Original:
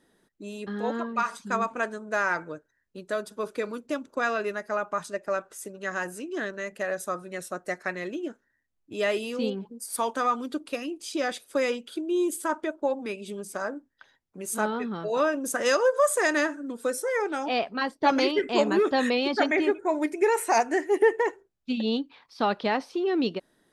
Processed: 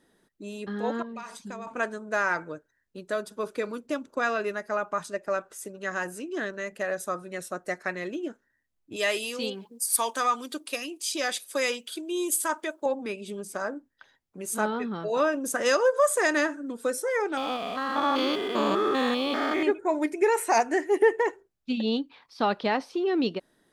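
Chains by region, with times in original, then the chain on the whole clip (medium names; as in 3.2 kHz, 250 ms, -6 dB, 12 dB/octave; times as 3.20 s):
1.02–1.67 s: peaking EQ 1.3 kHz -9 dB 0.63 oct + compression 5:1, threshold -35 dBFS
8.96–12.86 s: tilt EQ +3 dB/octave + band-stop 1.4 kHz, Q 14
17.37–19.63 s: spectrogram pixelated in time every 200 ms + small resonant body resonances 1.2/3.4 kHz, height 16 dB, ringing for 20 ms + hysteresis with a dead band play -42.5 dBFS
whole clip: none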